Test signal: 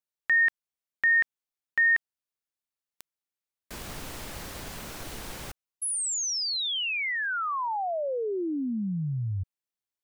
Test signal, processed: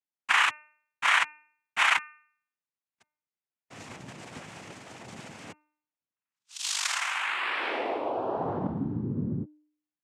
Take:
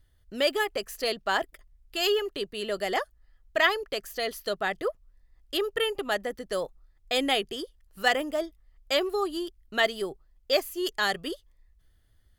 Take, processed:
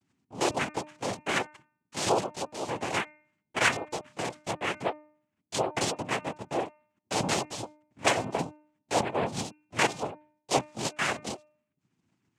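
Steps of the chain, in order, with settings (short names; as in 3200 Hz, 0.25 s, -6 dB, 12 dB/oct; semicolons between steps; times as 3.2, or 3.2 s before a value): monotone LPC vocoder at 8 kHz 140 Hz; noise vocoder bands 4; de-hum 302.2 Hz, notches 9; gain -1 dB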